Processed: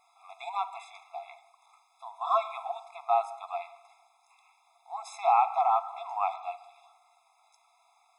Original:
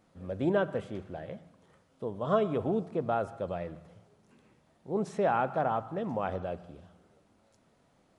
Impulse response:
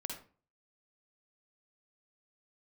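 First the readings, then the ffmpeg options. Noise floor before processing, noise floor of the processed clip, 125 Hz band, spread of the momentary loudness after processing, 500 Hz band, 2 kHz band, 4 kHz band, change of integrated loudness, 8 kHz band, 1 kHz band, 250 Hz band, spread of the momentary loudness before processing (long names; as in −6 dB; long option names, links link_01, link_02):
−68 dBFS, −68 dBFS, below −40 dB, 21 LU, −5.5 dB, −4.0 dB, +2.5 dB, +2.0 dB, can't be measured, +7.0 dB, below −40 dB, 15 LU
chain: -filter_complex "[0:a]equalizer=frequency=150:width_type=o:width=1.9:gain=-15,asplit=2[link_01][link_02];[1:a]atrim=start_sample=2205[link_03];[link_02][link_03]afir=irnorm=-1:irlink=0,volume=-10.5dB[link_04];[link_01][link_04]amix=inputs=2:normalize=0,afftfilt=real='re*eq(mod(floor(b*sr/1024/680),2),1)':imag='im*eq(mod(floor(b*sr/1024/680),2),1)':win_size=1024:overlap=0.75,volume=7dB"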